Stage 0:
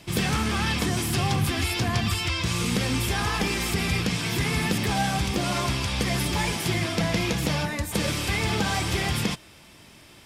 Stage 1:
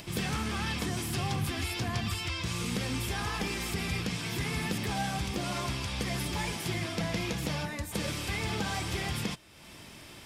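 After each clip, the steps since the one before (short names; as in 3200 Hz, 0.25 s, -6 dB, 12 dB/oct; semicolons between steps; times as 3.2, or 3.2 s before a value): upward compressor, threshold -31 dBFS; gain -7.5 dB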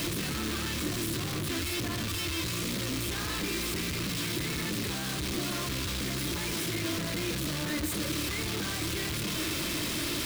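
infinite clipping; thirty-one-band EQ 315 Hz +10 dB, 800 Hz -10 dB, 4000 Hz +4 dB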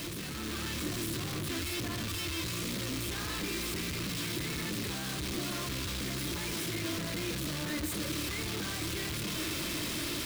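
AGC gain up to 4 dB; gain -7 dB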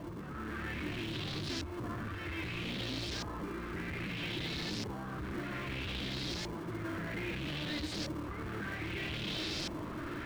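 LFO low-pass saw up 0.62 Hz 880–5500 Hz; in parallel at -8 dB: sample-and-hold 35×; on the sum: gain -5.5 dB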